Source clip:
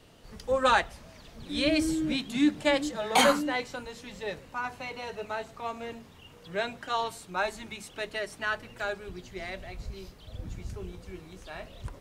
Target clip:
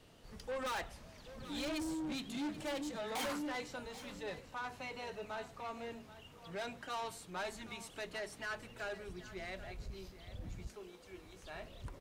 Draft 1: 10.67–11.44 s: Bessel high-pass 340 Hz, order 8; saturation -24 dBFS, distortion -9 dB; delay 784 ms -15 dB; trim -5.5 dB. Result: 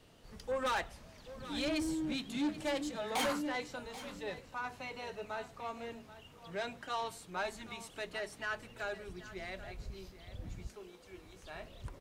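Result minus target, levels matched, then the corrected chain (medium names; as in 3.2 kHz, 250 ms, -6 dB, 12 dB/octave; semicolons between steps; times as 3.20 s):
saturation: distortion -5 dB
10.67–11.44 s: Bessel high-pass 340 Hz, order 8; saturation -31 dBFS, distortion -4 dB; delay 784 ms -15 dB; trim -5.5 dB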